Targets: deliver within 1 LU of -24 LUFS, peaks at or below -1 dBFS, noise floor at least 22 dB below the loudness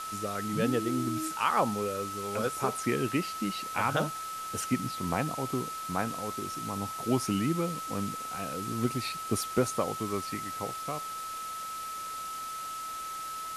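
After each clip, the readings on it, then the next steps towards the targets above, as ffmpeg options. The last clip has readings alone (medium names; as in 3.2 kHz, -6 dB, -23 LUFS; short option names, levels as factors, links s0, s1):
steady tone 1.3 kHz; tone level -36 dBFS; noise floor -38 dBFS; noise floor target -54 dBFS; loudness -32.0 LUFS; peak level -13.0 dBFS; loudness target -24.0 LUFS
-> -af "bandreject=f=1300:w=30"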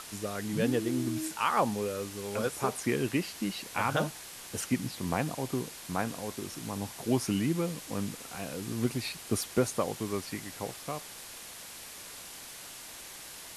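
steady tone not found; noise floor -46 dBFS; noise floor target -56 dBFS
-> -af "afftdn=nr=10:nf=-46"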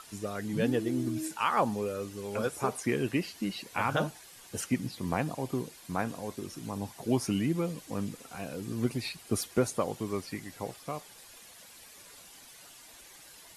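noise floor -53 dBFS; noise floor target -55 dBFS
-> -af "afftdn=nr=6:nf=-53"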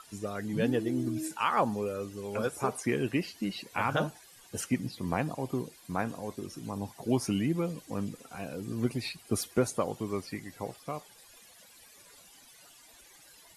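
noise floor -57 dBFS; loudness -33.0 LUFS; peak level -14.0 dBFS; loudness target -24.0 LUFS
-> -af "volume=2.82"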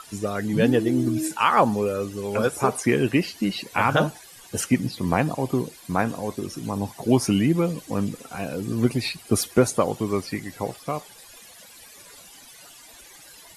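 loudness -24.0 LUFS; peak level -5.0 dBFS; noise floor -48 dBFS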